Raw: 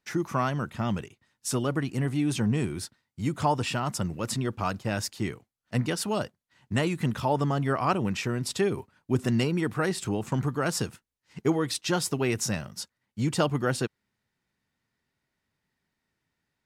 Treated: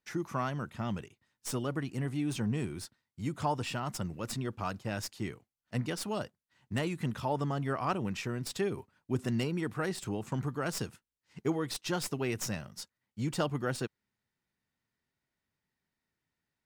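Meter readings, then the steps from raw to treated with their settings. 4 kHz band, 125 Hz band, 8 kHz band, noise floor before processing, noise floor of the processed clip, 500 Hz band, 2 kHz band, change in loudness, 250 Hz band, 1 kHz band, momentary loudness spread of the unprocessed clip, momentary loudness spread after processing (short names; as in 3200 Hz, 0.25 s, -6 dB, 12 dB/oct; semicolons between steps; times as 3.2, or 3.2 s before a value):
-6.5 dB, -6.5 dB, -7.5 dB, -83 dBFS, under -85 dBFS, -6.5 dB, -6.5 dB, -6.5 dB, -6.5 dB, -6.5 dB, 8 LU, 8 LU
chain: tracing distortion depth 0.034 ms; gain -6.5 dB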